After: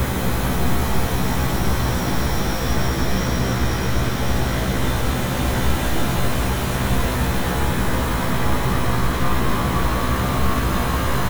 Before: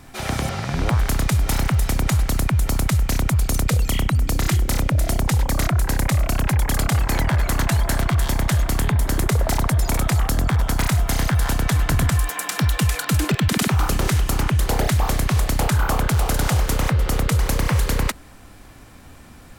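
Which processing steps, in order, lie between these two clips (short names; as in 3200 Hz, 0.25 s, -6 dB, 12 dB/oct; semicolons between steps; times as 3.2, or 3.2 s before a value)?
bell 630 Hz +10 dB 1.6 oct; half-wave rectifier; Paulstretch 11×, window 1.00 s, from 3.52; doubler 27 ms -4 dB; speed mistake 45 rpm record played at 78 rpm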